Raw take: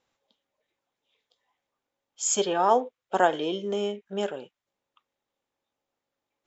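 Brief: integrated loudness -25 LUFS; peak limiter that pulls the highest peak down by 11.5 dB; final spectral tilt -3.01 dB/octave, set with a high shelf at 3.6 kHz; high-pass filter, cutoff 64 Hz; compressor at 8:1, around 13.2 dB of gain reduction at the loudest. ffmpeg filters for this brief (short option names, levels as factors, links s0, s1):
-af "highpass=64,highshelf=f=3600:g=4,acompressor=threshold=0.0398:ratio=8,volume=5.01,alimiter=limit=0.178:level=0:latency=1"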